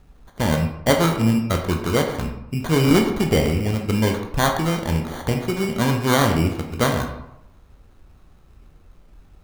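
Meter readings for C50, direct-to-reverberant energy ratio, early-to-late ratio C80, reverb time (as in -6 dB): 6.5 dB, 2.5 dB, 8.5 dB, 0.85 s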